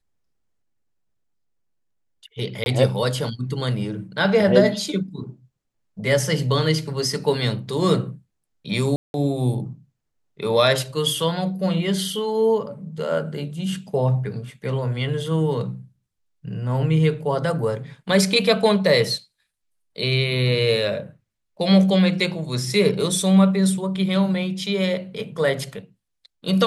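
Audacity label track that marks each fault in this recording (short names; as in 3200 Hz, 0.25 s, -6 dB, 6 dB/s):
2.640000	2.660000	gap 21 ms
8.960000	9.140000	gap 0.181 s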